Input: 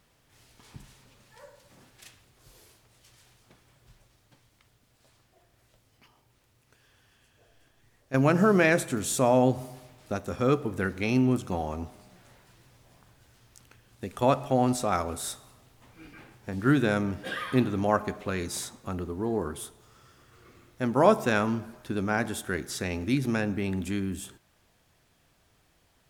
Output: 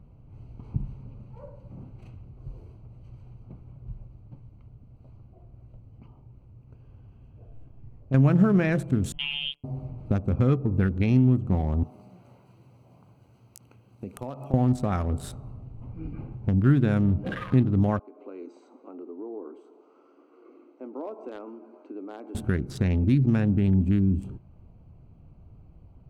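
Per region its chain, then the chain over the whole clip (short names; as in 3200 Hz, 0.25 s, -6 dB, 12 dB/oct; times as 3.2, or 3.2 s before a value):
9.12–9.64 expander -26 dBFS + robotiser 141 Hz + inverted band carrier 3400 Hz
11.83–14.54 HPF 98 Hz + RIAA curve recording + compressor 2.5:1, threshold -42 dBFS
17.99–22.35 compressor 2:1, threshold -50 dBFS + Chebyshev band-pass 280–8200 Hz, order 5
whole clip: Wiener smoothing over 25 samples; compressor 2:1, threshold -40 dBFS; tone controls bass +15 dB, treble -7 dB; gain +5.5 dB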